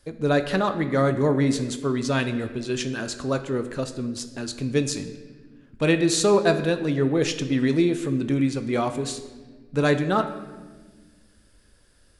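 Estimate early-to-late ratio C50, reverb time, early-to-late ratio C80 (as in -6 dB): 11.0 dB, 1.4 s, 12.5 dB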